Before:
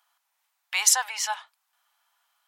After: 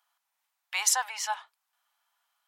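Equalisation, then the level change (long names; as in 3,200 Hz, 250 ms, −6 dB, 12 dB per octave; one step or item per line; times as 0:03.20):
low-shelf EQ 370 Hz +3.5 dB
mains-hum notches 60/120/180/240/300/360/420 Hz
dynamic equaliser 930 Hz, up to +4 dB, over −38 dBFS, Q 0.73
−5.5 dB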